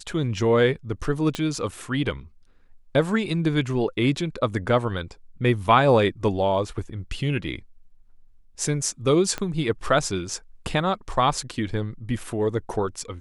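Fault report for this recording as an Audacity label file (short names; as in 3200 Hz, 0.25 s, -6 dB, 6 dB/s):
1.350000	1.350000	pop -13 dBFS
9.380000	9.380000	pop -14 dBFS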